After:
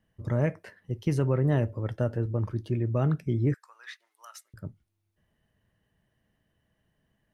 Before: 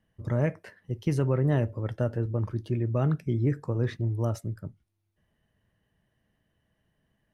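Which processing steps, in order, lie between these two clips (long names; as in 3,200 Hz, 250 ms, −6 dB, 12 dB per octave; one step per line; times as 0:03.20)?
0:03.54–0:04.54: high-pass filter 1,300 Hz 24 dB per octave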